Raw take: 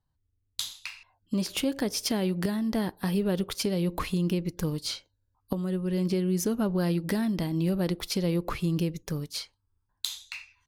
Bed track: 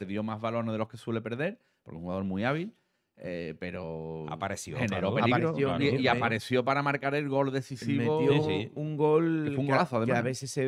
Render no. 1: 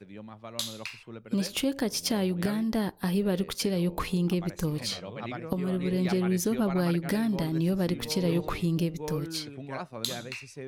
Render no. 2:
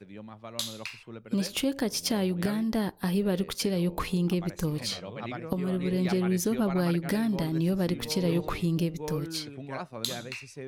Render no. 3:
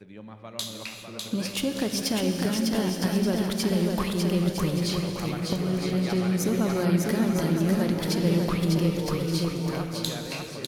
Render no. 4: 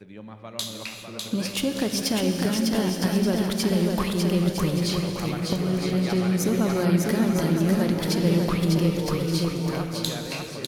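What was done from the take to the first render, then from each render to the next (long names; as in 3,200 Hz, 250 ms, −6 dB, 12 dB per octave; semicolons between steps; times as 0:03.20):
mix in bed track −11.5 dB
no processing that can be heard
bouncing-ball delay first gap 600 ms, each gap 0.6×, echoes 5; reverb whose tail is shaped and stops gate 430 ms flat, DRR 6.5 dB
level +2 dB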